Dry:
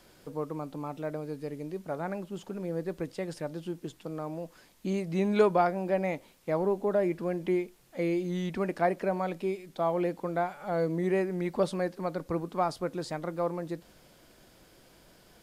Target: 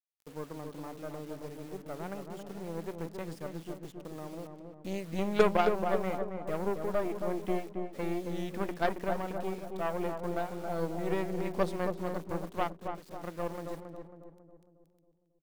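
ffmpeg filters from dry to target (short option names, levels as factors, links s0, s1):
-filter_complex "[0:a]asettb=1/sr,asplit=3[s0][s1][s2];[s0]atrim=end=6.814[s3];[s1]atrim=start=6.81:end=7.28,asetpts=PTS-STARTPTS,afade=t=in:d=0.004:c=qsin,afade=t=out:st=0.466:d=0.004:c=qsin,lowshelf=f=75:g=-11.5[s4];[s2]atrim=start=7.276[s5];[s3][s4]acrossfade=d=0.004:c1=hsin:c2=qsin[s6];[s6][s5]acrossfade=d=0.004:c1=qsin:c2=hsin,asplit=3[s7][s8][s9];[s7]afade=t=out:st=12.67:d=0.02[s10];[s8]acompressor=threshold=0.00794:ratio=10,afade=t=in:st=12.67:d=0.02,afade=t=out:st=13.2:d=0.02[s11];[s9]afade=t=in:st=13.2:d=0.02[s12];[s10][s11][s12]amix=inputs=3:normalize=0,aeval=exprs='0.211*(cos(1*acos(clip(val(0)/0.211,-1,1)))-cos(1*PI/2))+0.0376*(cos(3*acos(clip(val(0)/0.211,-1,1)))-cos(3*PI/2))+0.0237*(cos(4*acos(clip(val(0)/0.211,-1,1)))-cos(4*PI/2))+0.00133*(cos(7*acos(clip(val(0)/0.211,-1,1)))-cos(7*PI/2))+0.00168*(cos(8*acos(clip(val(0)/0.211,-1,1)))-cos(8*PI/2))':c=same,acrusher=bits=8:mix=0:aa=0.000001,asplit=2[s13][s14];[s14]adelay=273,lowpass=f=1100:p=1,volume=0.596,asplit=2[s15][s16];[s16]adelay=273,lowpass=f=1100:p=1,volume=0.54,asplit=2[s17][s18];[s18]adelay=273,lowpass=f=1100:p=1,volume=0.54,asplit=2[s19][s20];[s20]adelay=273,lowpass=f=1100:p=1,volume=0.54,asplit=2[s21][s22];[s22]adelay=273,lowpass=f=1100:p=1,volume=0.54,asplit=2[s23][s24];[s24]adelay=273,lowpass=f=1100:p=1,volume=0.54,asplit=2[s25][s26];[s26]adelay=273,lowpass=f=1100:p=1,volume=0.54[s27];[s13][s15][s17][s19][s21][s23][s25][s27]amix=inputs=8:normalize=0"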